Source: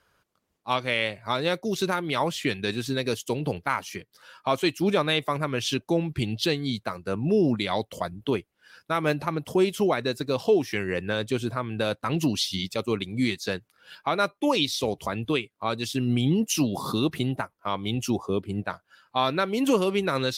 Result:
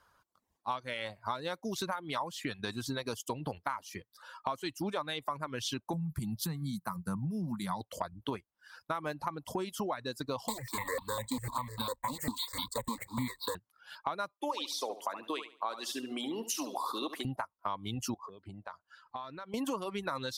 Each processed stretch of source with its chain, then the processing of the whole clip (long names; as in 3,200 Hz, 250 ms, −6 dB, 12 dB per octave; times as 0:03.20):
0:05.93–0:07.81: drawn EQ curve 120 Hz 0 dB, 170 Hz +14 dB, 250 Hz −3 dB, 450 Hz −11 dB, 630 Hz −12 dB, 920 Hz −2 dB, 1,900 Hz −7 dB, 3,000 Hz −14 dB, 5,500 Hz −2 dB, 12,000 Hz +12 dB + downward compressor 4 to 1, threshold −21 dBFS
0:10.48–0:13.55: one scale factor per block 3 bits + EQ curve with evenly spaced ripples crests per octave 1, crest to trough 17 dB + step-sequenced phaser 10 Hz 420–1,900 Hz
0:14.33–0:17.25: high-pass filter 320 Hz 24 dB per octave + repeating echo 71 ms, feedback 33%, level −6 dB
0:18.14–0:19.54: low-pass filter 7,200 Hz + downward compressor 12 to 1, threshold −38 dBFS
whole clip: reverb reduction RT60 0.61 s; graphic EQ with 15 bands 160 Hz −4 dB, 400 Hz −6 dB, 1,000 Hz +8 dB, 2,500 Hz −6 dB; downward compressor, threshold −31 dBFS; level −1.5 dB